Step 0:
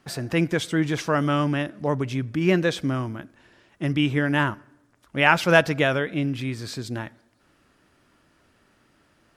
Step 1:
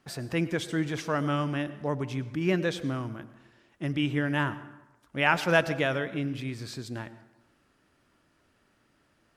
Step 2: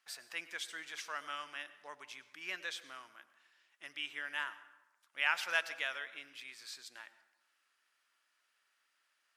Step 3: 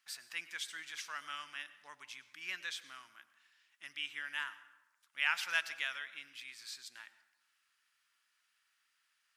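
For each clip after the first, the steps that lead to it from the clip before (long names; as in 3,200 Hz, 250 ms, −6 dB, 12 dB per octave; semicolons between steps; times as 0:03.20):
dense smooth reverb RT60 1 s, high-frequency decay 0.65×, pre-delay 85 ms, DRR 15 dB; level −6 dB
high-pass filter 1,500 Hz 12 dB per octave; level −4.5 dB
parametric band 500 Hz −13 dB 1.7 octaves; level +1.5 dB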